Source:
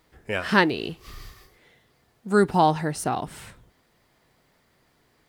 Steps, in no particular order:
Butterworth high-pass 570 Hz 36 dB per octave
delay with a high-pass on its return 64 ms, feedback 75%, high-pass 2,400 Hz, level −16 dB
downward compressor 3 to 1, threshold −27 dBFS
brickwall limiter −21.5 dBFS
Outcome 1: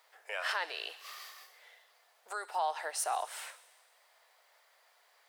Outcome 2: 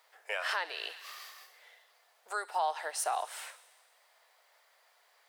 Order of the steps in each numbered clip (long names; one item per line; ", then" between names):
downward compressor, then delay with a high-pass on its return, then brickwall limiter, then Butterworth high-pass
delay with a high-pass on its return, then downward compressor, then Butterworth high-pass, then brickwall limiter